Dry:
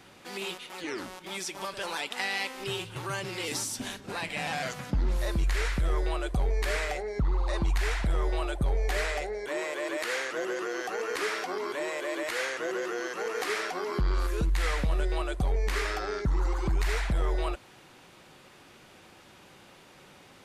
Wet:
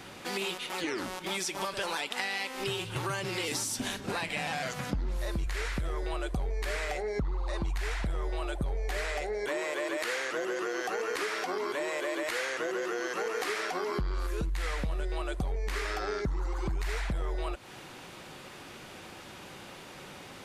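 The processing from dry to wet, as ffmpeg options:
-filter_complex "[0:a]asettb=1/sr,asplit=3[s0][s1][s2];[s0]atrim=end=5.464[s3];[s1]atrim=start=5.46:end=6.14,asetpts=PTS-STARTPTS,afade=t=in:d=0.004:c=qsin,afade=t=out:st=0.676:d=0.004:c=qsin,highpass=46[s4];[s2]atrim=start=6.136[s5];[s3][s4]acrossfade=d=0.004:c1=hsin:c2=qsin[s6];[s6][s5]acrossfade=d=0.004:c1=qsin:c2=hsin,acompressor=threshold=0.0141:ratio=6,volume=2.24"

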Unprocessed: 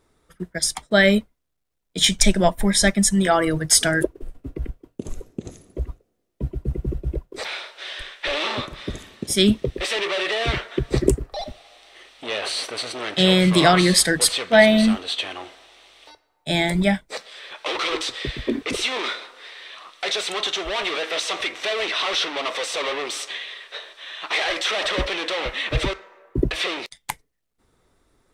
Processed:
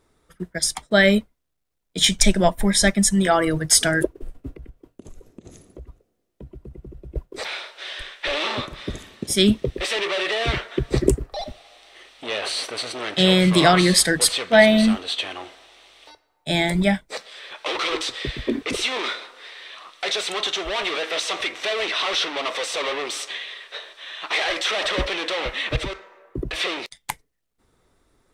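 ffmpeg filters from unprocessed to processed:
-filter_complex "[0:a]asettb=1/sr,asplit=3[s0][s1][s2];[s0]atrim=end=4.524[s3];[s1]atrim=start=4.52:end=7.16,asetpts=PTS-STARTPTS,afade=t=in:d=0.004:c=qsin,afade=t=out:st=2.636:d=0.004:c=qsin,acompressor=threshold=0.0126:ratio=4:attack=3.2:release=140:knee=1:detection=peak[s4];[s2]atrim=start=7.156[s5];[s3][s4]acrossfade=d=0.004:c1=hsin:c2=qsin[s6];[s6][s5]acrossfade=d=0.004:c1=qsin:c2=hsin,asettb=1/sr,asplit=3[s7][s8][s9];[s7]atrim=end=25.764[s10];[s8]atrim=start=25.76:end=26.53,asetpts=PTS-STARTPTS,afade=t=in:d=0.004:c=qsin,afade=t=out:st=0.766:d=0.004:c=qsin,acompressor=threshold=0.0562:ratio=3:attack=3.2:release=140:knee=1:detection=peak[s11];[s9]atrim=start=26.526[s12];[s10][s11]acrossfade=d=0.004:c1=hsin:c2=qsin[s13];[s13][s12]acrossfade=d=0.004:c1=qsin:c2=hsin"

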